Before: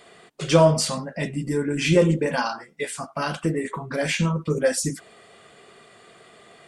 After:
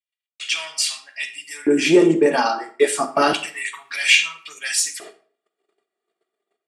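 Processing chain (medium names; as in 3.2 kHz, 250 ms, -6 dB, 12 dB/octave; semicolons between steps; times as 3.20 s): gate -44 dBFS, range -47 dB; level rider gain up to 12 dB; in parallel at -3 dB: peak limiter -8 dBFS, peak gain reduction 7 dB; on the sum: comb of notches 510 Hz; saturation -2 dBFS, distortion -23 dB; LFO high-pass square 0.3 Hz 370–2600 Hz; on a send at -12 dB: reverberation RT60 0.45 s, pre-delay 35 ms; on the sum: trim -4 dB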